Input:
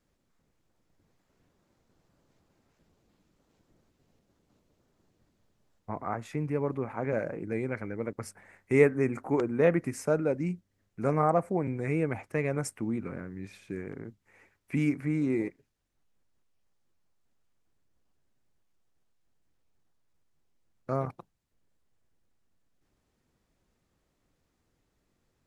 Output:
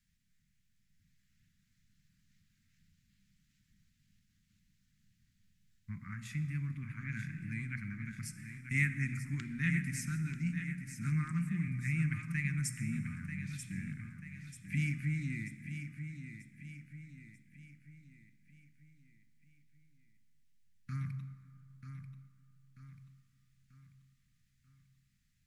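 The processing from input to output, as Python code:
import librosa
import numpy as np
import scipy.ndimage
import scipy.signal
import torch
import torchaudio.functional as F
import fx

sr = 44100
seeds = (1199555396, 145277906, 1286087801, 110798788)

p1 = scipy.signal.sosfilt(scipy.signal.ellip(3, 1.0, 70, [190.0, 1800.0], 'bandstop', fs=sr, output='sos'), x)
p2 = fx.hum_notches(p1, sr, base_hz=60, count=3)
p3 = p2 + fx.echo_feedback(p2, sr, ms=938, feedback_pct=46, wet_db=-9, dry=0)
y = fx.rev_plate(p3, sr, seeds[0], rt60_s=2.4, hf_ratio=0.55, predelay_ms=0, drr_db=10.0)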